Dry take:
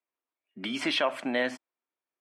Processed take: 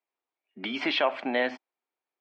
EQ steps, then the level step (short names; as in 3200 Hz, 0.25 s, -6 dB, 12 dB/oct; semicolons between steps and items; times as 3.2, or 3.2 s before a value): speaker cabinet 180–4700 Hz, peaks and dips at 420 Hz +4 dB, 800 Hz +7 dB, 2300 Hz +3 dB; 0.0 dB